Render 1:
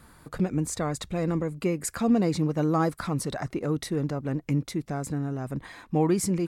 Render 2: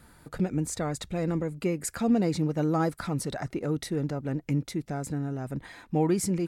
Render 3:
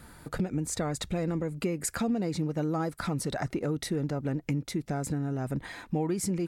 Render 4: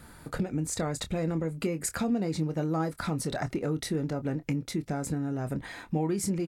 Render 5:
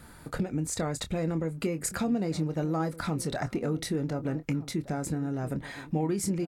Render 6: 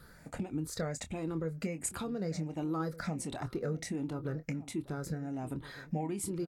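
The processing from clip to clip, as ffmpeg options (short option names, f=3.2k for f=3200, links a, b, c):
-af "bandreject=f=1.1k:w=7.3,volume=-1.5dB"
-af "acompressor=threshold=-32dB:ratio=4,volume=4.5dB"
-filter_complex "[0:a]asplit=2[a][b];[b]adelay=25,volume=-11dB[c];[a][c]amix=inputs=2:normalize=0"
-filter_complex "[0:a]asplit=2[a][b];[b]adelay=1516,volume=-16dB,highshelf=f=4k:g=-34.1[c];[a][c]amix=inputs=2:normalize=0"
-af "afftfilt=real='re*pow(10,10/40*sin(2*PI*(0.6*log(max(b,1)*sr/1024/100)/log(2)-(1.4)*(pts-256)/sr)))':imag='im*pow(10,10/40*sin(2*PI*(0.6*log(max(b,1)*sr/1024/100)/log(2)-(1.4)*(pts-256)/sr)))':win_size=1024:overlap=0.75,volume=-7dB"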